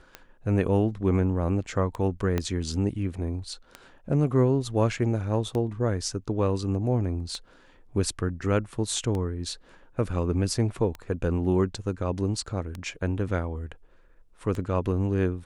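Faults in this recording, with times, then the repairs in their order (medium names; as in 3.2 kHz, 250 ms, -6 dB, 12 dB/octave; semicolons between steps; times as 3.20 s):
tick 33 1/3 rpm -20 dBFS
2.38 s: pop -13 dBFS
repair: de-click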